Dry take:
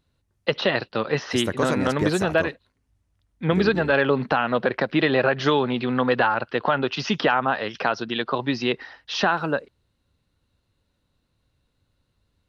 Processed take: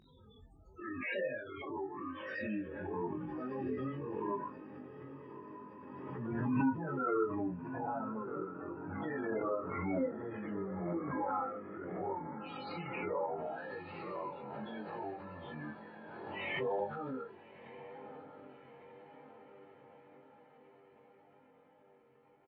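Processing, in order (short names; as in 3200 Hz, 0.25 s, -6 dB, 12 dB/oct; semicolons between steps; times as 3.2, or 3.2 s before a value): repeated pitch sweeps -10 st, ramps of 0.626 s; harmonic-percussive split percussive -12 dB; plain phase-vocoder stretch 1.8×; bell 8900 Hz +2.5 dB 1.5 oct; loudest bins only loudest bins 16; on a send: diffused feedback echo 1.248 s, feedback 57%, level -10.5 dB; on the sum: chorus 0.88 Hz, delay 19 ms, depth 2.2 ms; HPF 500 Hz 6 dB/oct; high shelf 3700 Hz -12 dB; doubler 23 ms -5 dB; backwards sustainer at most 28 dB/s; gain -2.5 dB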